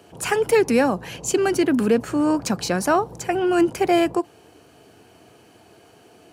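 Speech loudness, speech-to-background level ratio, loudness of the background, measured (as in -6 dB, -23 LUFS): -21.0 LUFS, 19.5 dB, -40.5 LUFS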